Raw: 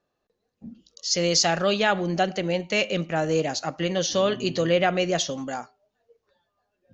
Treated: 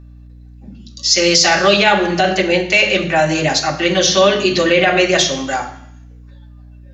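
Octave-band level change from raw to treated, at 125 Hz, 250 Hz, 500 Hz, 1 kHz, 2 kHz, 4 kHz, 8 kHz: +6.0 dB, +9.0 dB, +9.0 dB, +10.5 dB, +13.5 dB, +12.0 dB, can't be measured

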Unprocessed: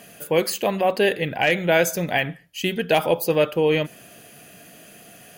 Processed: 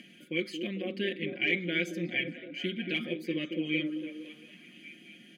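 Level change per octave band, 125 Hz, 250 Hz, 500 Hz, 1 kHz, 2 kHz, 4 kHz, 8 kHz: −11.5, −5.5, −17.0, −29.5, −8.0, −7.5, −24.0 decibels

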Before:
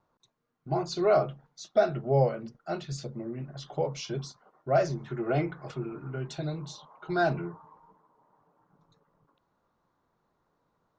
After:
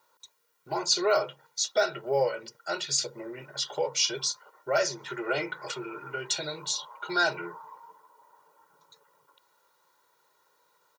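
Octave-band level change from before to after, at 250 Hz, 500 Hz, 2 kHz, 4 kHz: −6.0, −1.5, +7.0, +14.0 decibels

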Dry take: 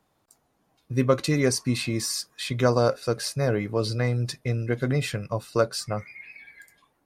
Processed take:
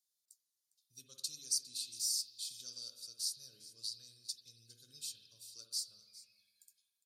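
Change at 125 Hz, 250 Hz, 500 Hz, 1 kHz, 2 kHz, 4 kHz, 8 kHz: below −40 dB, below −40 dB, below −40 dB, below −40 dB, below −35 dB, −7.0 dB, −5.0 dB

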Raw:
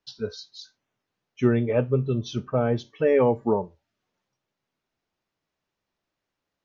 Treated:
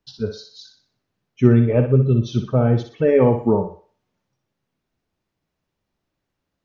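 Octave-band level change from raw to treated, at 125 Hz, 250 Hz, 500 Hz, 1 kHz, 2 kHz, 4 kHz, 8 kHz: +10.5 dB, +7.5 dB, +4.5 dB, +2.5 dB, +1.5 dB, +1.0 dB, can't be measured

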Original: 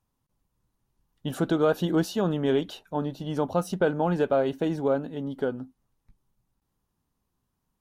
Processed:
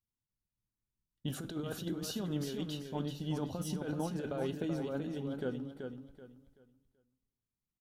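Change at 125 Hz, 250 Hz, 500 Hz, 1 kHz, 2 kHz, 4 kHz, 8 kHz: −7.5, −9.5, −14.5, −15.0, −12.5, −5.5, −2.0 decibels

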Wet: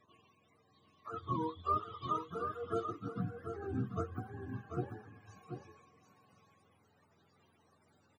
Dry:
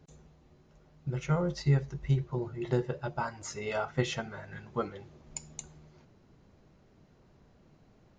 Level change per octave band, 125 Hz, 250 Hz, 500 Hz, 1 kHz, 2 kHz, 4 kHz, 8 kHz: −11.5 dB, −6.0 dB, −7.0 dB, +1.5 dB, −13.5 dB, −13.5 dB, below −20 dB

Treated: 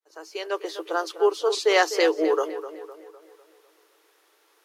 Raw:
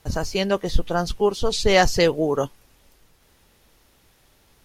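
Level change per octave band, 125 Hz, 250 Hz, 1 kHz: below −40 dB, −5.5 dB, −2.0 dB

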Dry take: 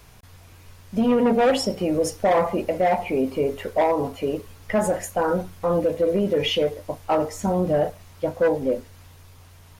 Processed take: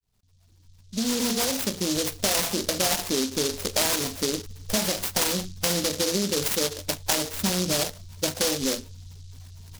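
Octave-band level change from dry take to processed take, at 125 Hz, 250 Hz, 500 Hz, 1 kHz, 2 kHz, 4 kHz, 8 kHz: −3.0, −4.5, −9.0, −9.0, +0.5, +7.0, +13.5 decibels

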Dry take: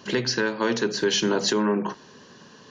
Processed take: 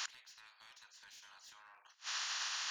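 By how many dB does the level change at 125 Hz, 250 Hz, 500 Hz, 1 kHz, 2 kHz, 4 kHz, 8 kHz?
below −40 dB, below −40 dB, below −40 dB, −19.0 dB, −16.5 dB, −14.0 dB, −12.5 dB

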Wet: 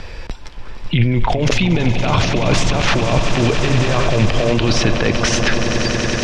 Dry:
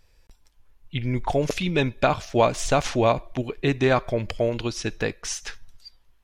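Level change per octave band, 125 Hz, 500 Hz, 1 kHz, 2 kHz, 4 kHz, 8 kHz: +12.0, +4.0, +5.0, +10.5, +12.5, +9.0 decibels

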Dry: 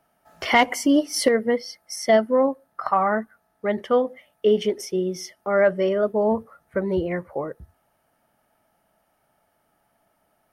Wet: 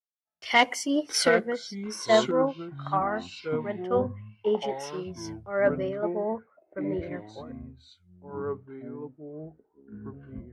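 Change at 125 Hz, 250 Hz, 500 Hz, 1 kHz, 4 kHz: −1.5, −6.5, −5.5, −4.5, −1.0 decibels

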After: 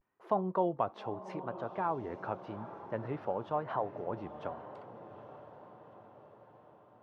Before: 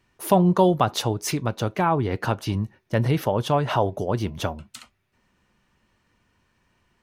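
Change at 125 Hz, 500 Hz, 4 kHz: −21.0 dB, −11.5 dB, below −25 dB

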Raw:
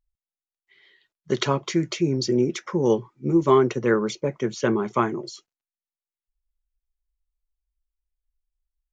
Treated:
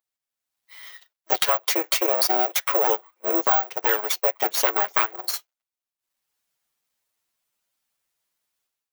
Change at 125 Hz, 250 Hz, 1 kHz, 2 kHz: below −30 dB, −12.5 dB, +3.5 dB, +5.0 dB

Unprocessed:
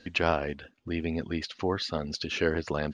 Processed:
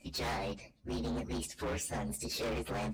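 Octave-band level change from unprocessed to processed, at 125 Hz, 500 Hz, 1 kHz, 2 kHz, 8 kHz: −5.5, −8.5, −6.5, −10.0, +6.5 decibels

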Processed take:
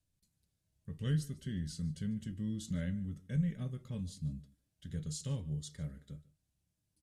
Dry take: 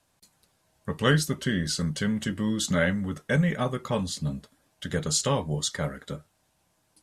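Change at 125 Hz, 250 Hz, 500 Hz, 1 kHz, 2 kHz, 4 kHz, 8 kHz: −8.0 dB, −10.5 dB, −22.0 dB, below −25 dB, −24.5 dB, −20.0 dB, −18.0 dB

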